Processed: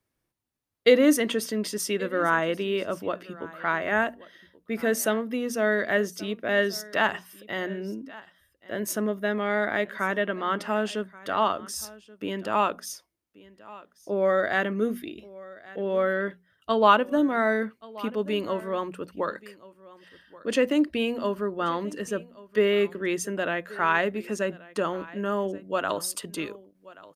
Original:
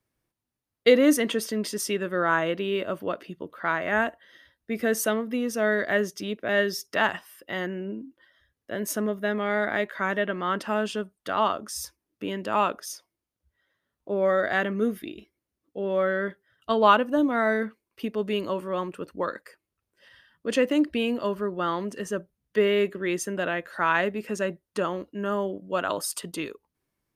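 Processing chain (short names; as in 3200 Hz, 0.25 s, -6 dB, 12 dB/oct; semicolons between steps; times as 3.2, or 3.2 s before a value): notches 60/120/180/240 Hz; on a send: echo 1.13 s -20.5 dB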